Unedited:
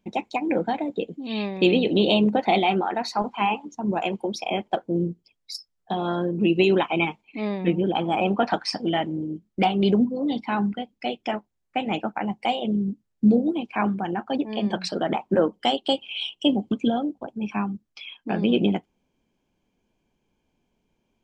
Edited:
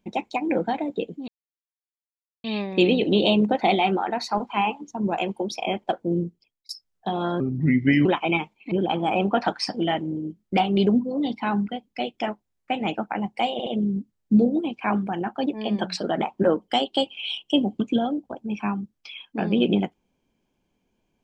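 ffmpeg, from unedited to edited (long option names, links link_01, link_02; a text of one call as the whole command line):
ffmpeg -i in.wav -filter_complex "[0:a]asplit=8[link_01][link_02][link_03][link_04][link_05][link_06][link_07][link_08];[link_01]atrim=end=1.28,asetpts=PTS-STARTPTS,afade=type=out:start_time=1.276:duration=0.004:curve=hsin,apad=pad_dur=1.16[link_09];[link_02]atrim=start=1.28:end=5.53,asetpts=PTS-STARTPTS,afade=type=in:duration=0.004:curve=hsin,afade=type=out:start_time=3.8:duration=0.45[link_10];[link_03]atrim=start=5.53:end=6.244,asetpts=PTS-STARTPTS,afade=type=in:duration=0.004:curve=hsin[link_11];[link_04]atrim=start=6.24:end=6.73,asetpts=PTS-STARTPTS,asetrate=33075,aresample=44100[link_12];[link_05]atrim=start=6.726:end=7.392[link_13];[link_06]atrim=start=7.768:end=12.652[link_14];[link_07]atrim=start=12.578:end=12.652[link_15];[link_08]atrim=start=12.578[link_16];[link_09][link_10][link_11]concat=n=3:v=0:a=1[link_17];[link_17][link_12]acrossfade=duration=0.004:curve1=hsin:curve2=hsin[link_18];[link_18][link_13]acrossfade=duration=0.004:curve1=hsin:curve2=hsin[link_19];[link_19][link_14]acrossfade=duration=0.004:curve1=hsin:curve2=hsin[link_20];[link_20][link_15]acrossfade=duration=0.004:curve1=hsin:curve2=hsin[link_21];[link_21][link_16]acrossfade=duration=0.004:curve1=hsin:curve2=hsin" out.wav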